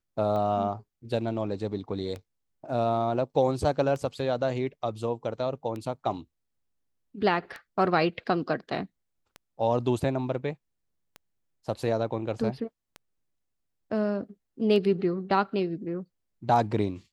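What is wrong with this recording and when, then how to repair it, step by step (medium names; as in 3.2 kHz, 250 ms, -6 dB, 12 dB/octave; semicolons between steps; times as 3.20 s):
tick 33 1/3 rpm -24 dBFS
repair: de-click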